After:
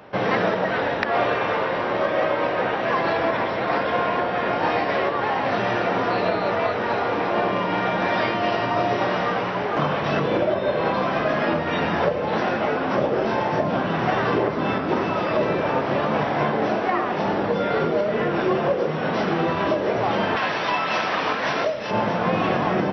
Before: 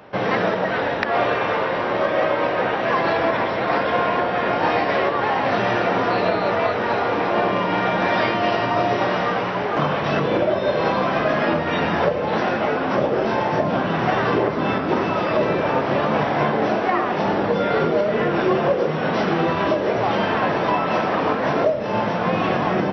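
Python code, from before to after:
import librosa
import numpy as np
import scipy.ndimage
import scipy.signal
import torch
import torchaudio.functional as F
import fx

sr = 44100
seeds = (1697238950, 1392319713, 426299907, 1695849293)

y = fx.lowpass(x, sr, hz=4100.0, slope=12, at=(10.54, 10.94))
y = fx.tilt_shelf(y, sr, db=-8.0, hz=1200.0, at=(20.36, 21.91))
y = fx.rider(y, sr, range_db=10, speed_s=2.0)
y = F.gain(torch.from_numpy(y), -2.0).numpy()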